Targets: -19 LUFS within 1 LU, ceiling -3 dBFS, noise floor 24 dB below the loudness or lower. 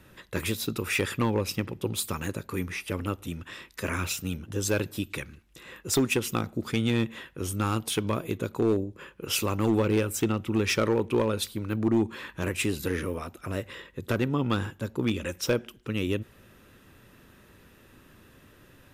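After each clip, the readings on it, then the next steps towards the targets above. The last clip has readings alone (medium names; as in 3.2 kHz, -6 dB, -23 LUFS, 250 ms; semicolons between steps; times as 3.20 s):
clipped samples 0.5%; clipping level -17.0 dBFS; loudness -29.0 LUFS; peak level -17.0 dBFS; loudness target -19.0 LUFS
-> clip repair -17 dBFS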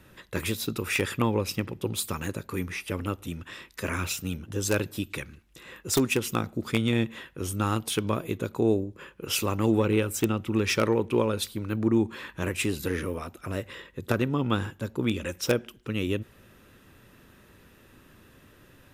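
clipped samples 0.0%; loudness -28.5 LUFS; peak level -8.0 dBFS; loudness target -19.0 LUFS
-> trim +9.5 dB; peak limiter -3 dBFS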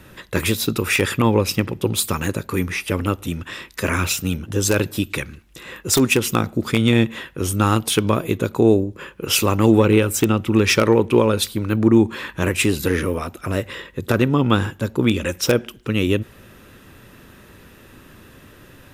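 loudness -19.5 LUFS; peak level -3.0 dBFS; noise floor -47 dBFS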